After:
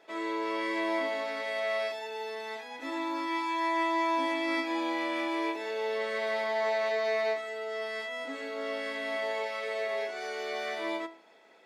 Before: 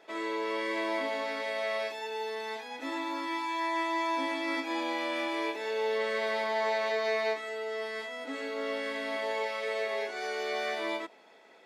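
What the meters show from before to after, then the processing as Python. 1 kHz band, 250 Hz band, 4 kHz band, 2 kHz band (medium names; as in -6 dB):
+1.0 dB, +2.5 dB, -1.0 dB, 0.0 dB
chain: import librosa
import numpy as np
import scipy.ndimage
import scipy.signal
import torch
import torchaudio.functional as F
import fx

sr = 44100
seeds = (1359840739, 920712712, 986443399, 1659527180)

y = fx.comb_fb(x, sr, f0_hz=330.0, decay_s=0.44, harmonics='all', damping=0.0, mix_pct=50)
y = F.gain(torch.from_numpy(y), 3.5).numpy()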